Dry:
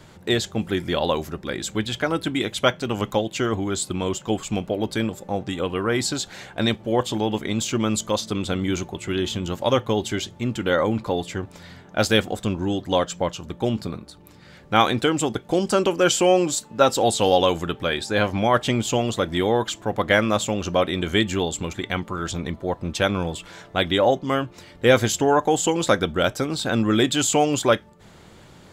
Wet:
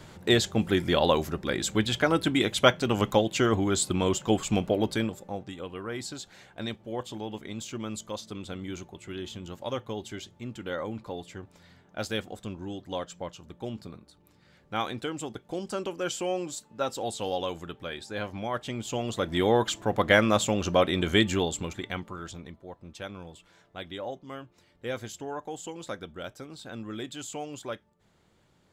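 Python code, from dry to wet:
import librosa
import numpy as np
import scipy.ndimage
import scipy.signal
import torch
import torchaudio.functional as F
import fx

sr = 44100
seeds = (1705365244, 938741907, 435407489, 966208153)

y = fx.gain(x, sr, db=fx.line((4.77, -0.5), (5.57, -13.0), (18.71, -13.0), (19.5, -2.0), (21.28, -2.0), (22.12, -10.0), (22.64, -18.0)))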